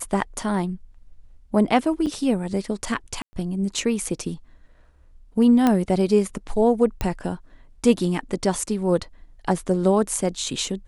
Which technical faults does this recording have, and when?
0:02.06–0:02.07: drop-out 6.9 ms
0:03.22–0:03.33: drop-out 110 ms
0:05.67: click −7 dBFS
0:07.01: click −12 dBFS

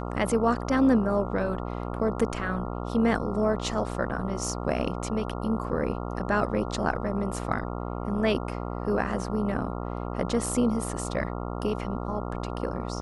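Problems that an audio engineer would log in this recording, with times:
mains buzz 60 Hz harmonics 23 −33 dBFS

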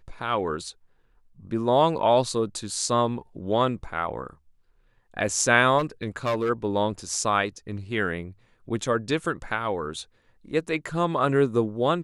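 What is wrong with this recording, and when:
0:05.78–0:06.50: clipping −20.5 dBFS

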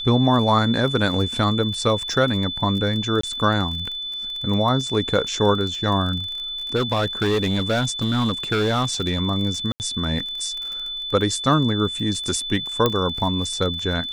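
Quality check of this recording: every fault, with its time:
surface crackle 28 per second −28 dBFS
whistle 3,500 Hz −27 dBFS
0:03.21–0:03.23: drop-out 24 ms
0:06.75–0:09.21: clipping −16 dBFS
0:09.72–0:09.80: drop-out 79 ms
0:12.86: click −5 dBFS

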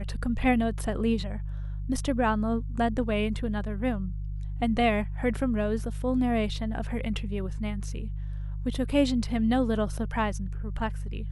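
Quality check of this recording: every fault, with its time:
mains hum 50 Hz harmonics 3 −33 dBFS

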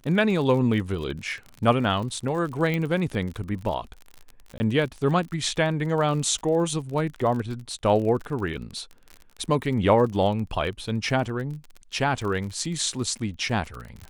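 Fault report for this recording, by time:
surface crackle 42 per second −32 dBFS
0:02.74: click −15 dBFS
0:04.58–0:04.60: drop-out 20 ms
0:08.57–0:08.58: drop-out 6.2 ms

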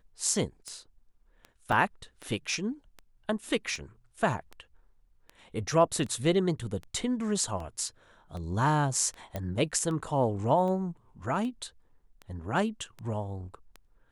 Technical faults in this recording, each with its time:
scratch tick 78 rpm −28 dBFS
0:01.72: drop-out 4.4 ms
0:09.36: click −20 dBFS

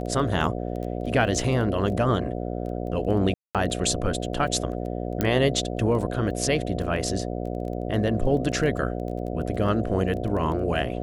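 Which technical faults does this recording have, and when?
mains buzz 60 Hz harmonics 12 −30 dBFS
surface crackle 11 per second −32 dBFS
0:03.34–0:03.55: drop-out 207 ms
0:05.21: click −9 dBFS

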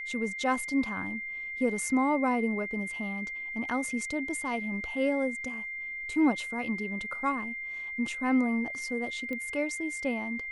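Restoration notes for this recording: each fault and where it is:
whistle 2,100 Hz −35 dBFS
0:09.33: click −24 dBFS

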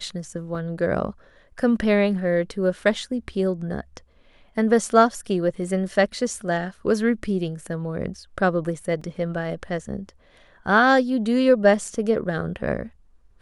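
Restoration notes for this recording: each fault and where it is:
0:00.55: drop-out 3.6 ms
0:09.01: drop-out 4.5 ms

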